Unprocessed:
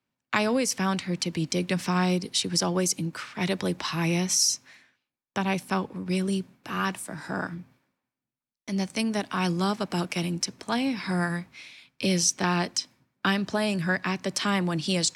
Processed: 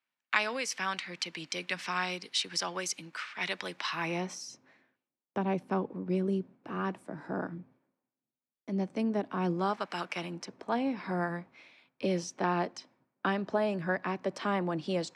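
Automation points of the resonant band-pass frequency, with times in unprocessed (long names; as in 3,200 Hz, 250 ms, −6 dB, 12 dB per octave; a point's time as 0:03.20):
resonant band-pass, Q 0.81
0:03.85 2,100 Hz
0:04.45 400 Hz
0:09.49 400 Hz
0:09.91 1,800 Hz
0:10.57 580 Hz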